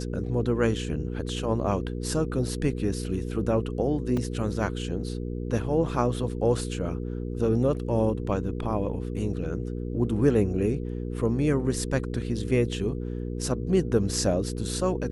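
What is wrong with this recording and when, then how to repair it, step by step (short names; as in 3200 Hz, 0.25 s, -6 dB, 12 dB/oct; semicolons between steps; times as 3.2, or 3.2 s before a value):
hum 60 Hz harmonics 8 -32 dBFS
4.17 gap 3.3 ms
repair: de-hum 60 Hz, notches 8; interpolate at 4.17, 3.3 ms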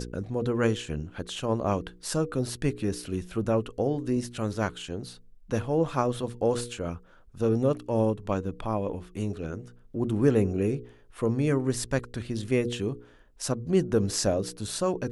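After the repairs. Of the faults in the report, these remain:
none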